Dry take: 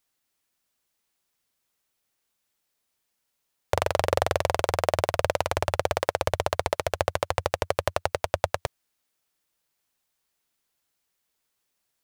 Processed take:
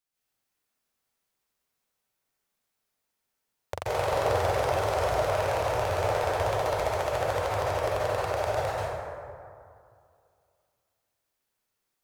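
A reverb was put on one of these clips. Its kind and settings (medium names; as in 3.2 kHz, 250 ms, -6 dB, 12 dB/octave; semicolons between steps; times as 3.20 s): plate-style reverb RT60 2.4 s, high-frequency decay 0.4×, pre-delay 120 ms, DRR -9.5 dB; trim -11 dB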